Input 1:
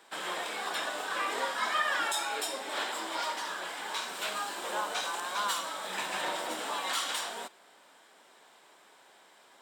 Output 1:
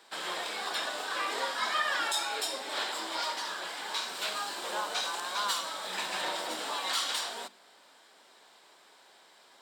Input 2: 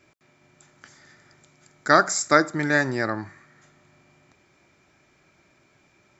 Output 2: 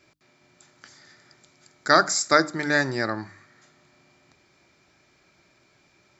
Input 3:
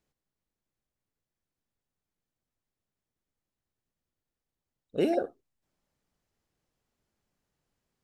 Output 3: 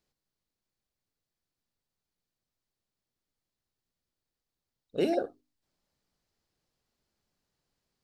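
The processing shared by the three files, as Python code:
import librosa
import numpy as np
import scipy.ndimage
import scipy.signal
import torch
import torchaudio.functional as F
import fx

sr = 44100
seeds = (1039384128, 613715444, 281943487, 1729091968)

y = fx.peak_eq(x, sr, hz=4500.0, db=7.0, octaves=0.65)
y = fx.hum_notches(y, sr, base_hz=50, count=6)
y = y * librosa.db_to_amplitude(-1.0)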